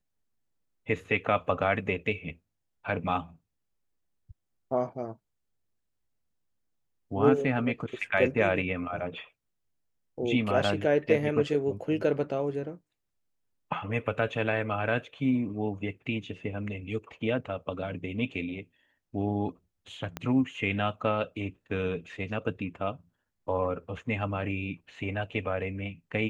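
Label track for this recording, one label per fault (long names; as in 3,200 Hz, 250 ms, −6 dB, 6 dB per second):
20.170000	20.170000	click −19 dBFS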